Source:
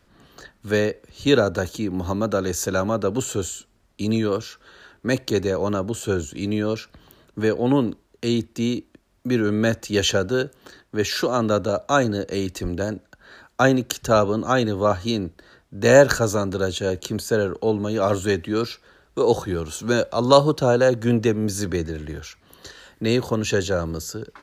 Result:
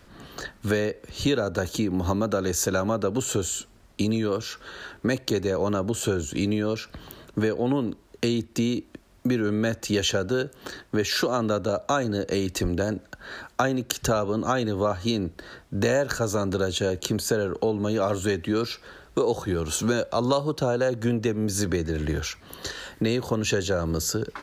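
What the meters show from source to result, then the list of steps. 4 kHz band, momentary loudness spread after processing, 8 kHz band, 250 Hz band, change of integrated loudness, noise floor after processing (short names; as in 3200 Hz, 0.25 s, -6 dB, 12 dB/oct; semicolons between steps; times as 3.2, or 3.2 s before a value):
-2.0 dB, 10 LU, 0.0 dB, -2.5 dB, -4.0 dB, -54 dBFS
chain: compressor 6:1, threshold -29 dBFS, peak gain reduction 20 dB; gain +7.5 dB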